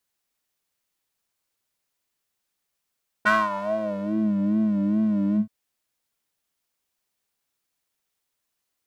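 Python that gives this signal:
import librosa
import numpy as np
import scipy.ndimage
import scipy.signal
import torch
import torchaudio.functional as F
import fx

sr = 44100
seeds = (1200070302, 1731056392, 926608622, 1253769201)

y = fx.sub_patch_vibrato(sr, seeds[0], note=56, wave='square', wave2='saw', interval_st=7, detune_cents=17, level2_db=-9.5, sub_db=-12, noise_db=-13, kind='bandpass', cutoff_hz=130.0, q=3.7, env_oct=3.5, env_decay_s=1.0, env_sustain_pct=30, attack_ms=20.0, decay_s=0.22, sustain_db=-13, release_s=0.12, note_s=2.11, lfo_hz=2.4, vibrato_cents=83)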